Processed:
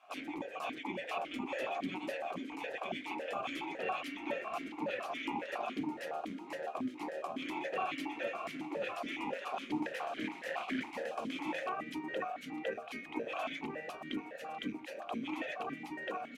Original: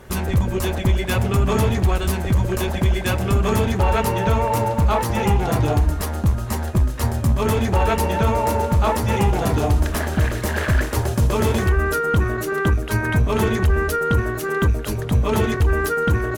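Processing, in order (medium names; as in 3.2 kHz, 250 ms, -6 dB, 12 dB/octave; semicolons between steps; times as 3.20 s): spectral gate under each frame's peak -15 dB weak; stepped vowel filter 7.2 Hz; trim +2.5 dB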